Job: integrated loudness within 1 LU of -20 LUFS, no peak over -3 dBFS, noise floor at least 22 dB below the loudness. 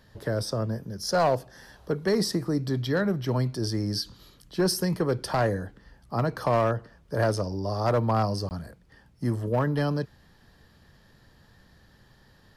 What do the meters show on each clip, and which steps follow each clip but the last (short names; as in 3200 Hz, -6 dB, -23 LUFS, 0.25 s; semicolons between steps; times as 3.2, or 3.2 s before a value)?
clipped 0.6%; flat tops at -17.0 dBFS; dropouts 1; longest dropout 19 ms; loudness -27.5 LUFS; peak -17.0 dBFS; loudness target -20.0 LUFS
-> clip repair -17 dBFS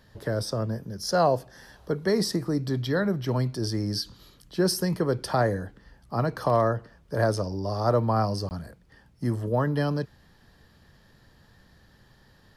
clipped 0.0%; dropouts 1; longest dropout 19 ms
-> interpolate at 8.49, 19 ms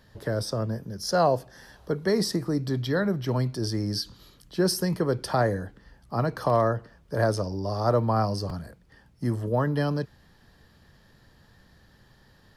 dropouts 0; loudness -27.0 LUFS; peak -10.5 dBFS; loudness target -20.0 LUFS
-> gain +7 dB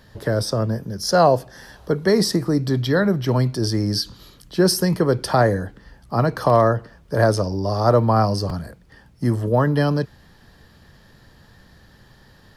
loudness -20.0 LUFS; peak -3.5 dBFS; noise floor -51 dBFS